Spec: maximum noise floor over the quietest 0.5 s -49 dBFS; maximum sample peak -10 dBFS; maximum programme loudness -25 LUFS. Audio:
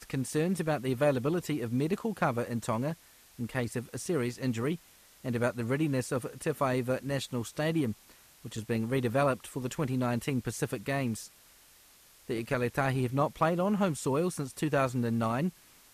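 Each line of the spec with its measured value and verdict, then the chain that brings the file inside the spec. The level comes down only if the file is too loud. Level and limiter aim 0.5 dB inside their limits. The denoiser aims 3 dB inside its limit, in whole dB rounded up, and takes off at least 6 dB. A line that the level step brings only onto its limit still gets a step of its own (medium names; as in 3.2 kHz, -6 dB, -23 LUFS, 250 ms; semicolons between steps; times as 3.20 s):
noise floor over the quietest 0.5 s -59 dBFS: pass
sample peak -15.0 dBFS: pass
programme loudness -31.5 LUFS: pass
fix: none needed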